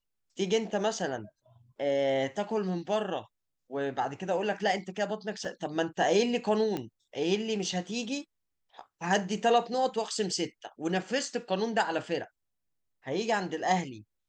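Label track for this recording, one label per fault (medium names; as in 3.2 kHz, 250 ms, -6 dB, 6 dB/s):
5.450000	5.450000	dropout 2.3 ms
6.770000	6.770000	pop -20 dBFS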